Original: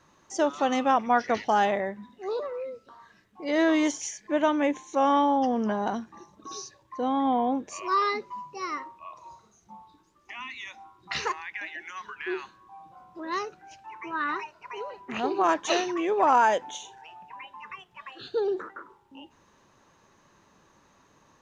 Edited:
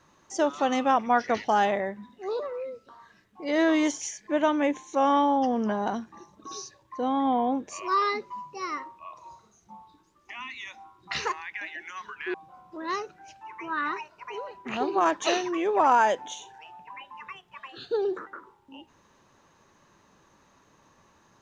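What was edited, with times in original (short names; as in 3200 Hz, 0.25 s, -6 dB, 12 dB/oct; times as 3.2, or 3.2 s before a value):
12.34–12.77 cut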